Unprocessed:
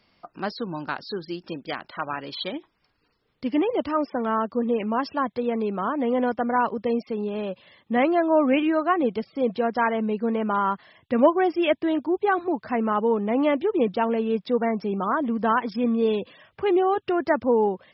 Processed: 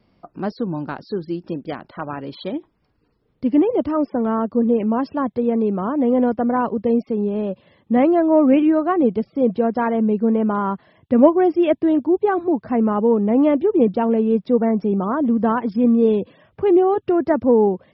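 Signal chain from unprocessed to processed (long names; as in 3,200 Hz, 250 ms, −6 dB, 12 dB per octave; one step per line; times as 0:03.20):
harmonic generator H 3 −28 dB, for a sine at −7 dBFS
tilt shelving filter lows +8.5 dB, about 850 Hz
tape wow and flutter 24 cents
level +2 dB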